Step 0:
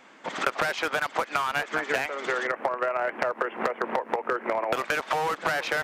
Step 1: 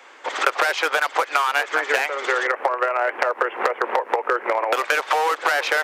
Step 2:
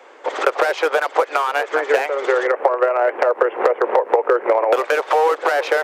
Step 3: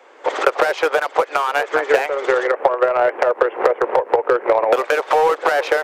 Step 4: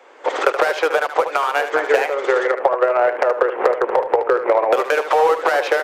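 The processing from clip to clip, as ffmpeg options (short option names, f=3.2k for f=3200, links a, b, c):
-af "highpass=f=390:w=0.5412,highpass=f=390:w=1.3066,bandreject=f=650:w=12,volume=7dB"
-af "equalizer=f=470:t=o:w=1.9:g=13.5,volume=-4.5dB"
-af "aeval=exprs='0.891*(cos(1*acos(clip(val(0)/0.891,-1,1)))-cos(1*PI/2))+0.0282*(cos(7*acos(clip(val(0)/0.891,-1,1)))-cos(7*PI/2))':c=same,dynaudnorm=f=150:g=3:m=11.5dB,volume=-1dB"
-filter_complex "[0:a]asplit=2[a][b];[b]asoftclip=type=tanh:threshold=-12dB,volume=-11.5dB[c];[a][c]amix=inputs=2:normalize=0,aecho=1:1:75:0.316,volume=-2dB"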